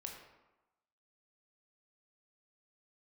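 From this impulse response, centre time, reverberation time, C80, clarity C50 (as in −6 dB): 40 ms, 1.0 s, 6.0 dB, 4.0 dB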